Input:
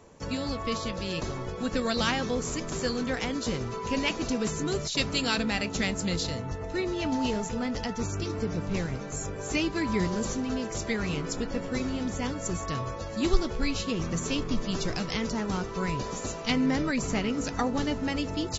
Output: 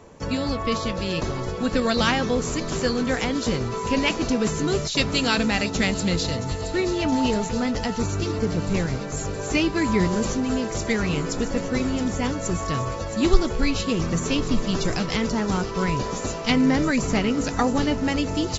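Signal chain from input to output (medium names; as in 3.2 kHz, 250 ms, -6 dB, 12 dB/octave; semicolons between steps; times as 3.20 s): treble shelf 4.9 kHz -5 dB; feedback echo behind a high-pass 671 ms, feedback 78%, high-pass 5.2 kHz, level -8 dB; trim +6.5 dB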